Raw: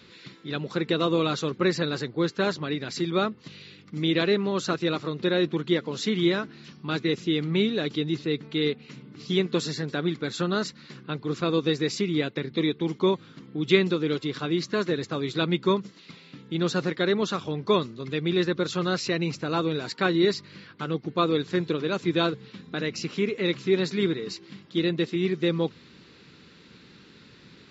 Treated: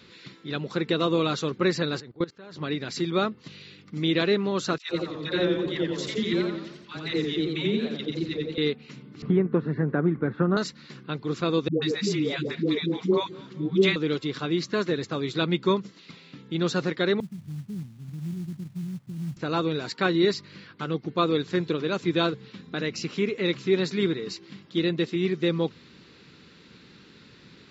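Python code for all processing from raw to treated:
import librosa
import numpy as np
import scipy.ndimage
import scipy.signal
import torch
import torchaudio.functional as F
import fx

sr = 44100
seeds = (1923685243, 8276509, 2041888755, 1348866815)

y = fx.chain(x, sr, fx.lowpass(hz=3700.0, slope=6),
    fx.level_steps(step_db=22), at=(2.0, 2.57))
y = fx.chain(y, sr, fx.level_steps(step_db=12),
    fx.dispersion(late='lows', ms=118.0, hz=640.0),
    fx.echo_warbled(ms=88, feedback_pct=50, rate_hz=2.8, cents=104, wet_db=-4), at=(4.78, 8.58))
y = fx.chain(y, sr, fx.lowpass(hz=1700.0, slope=24),
    fx.low_shelf(hz=280.0, db=6.0),
    fx.band_squash(depth_pct=70), at=(9.22, 10.57))
y = fx.chain(y, sr, fx.dispersion(late='highs', ms=141.0, hz=450.0),
    fx.echo_feedback(ms=209, feedback_pct=52, wet_db=-21.0), at=(11.68, 13.96))
y = fx.chain(y, sr, fx.cheby2_lowpass(hz=830.0, order=4, stop_db=70),
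    fx.quant_companded(bits=6), at=(17.2, 19.37))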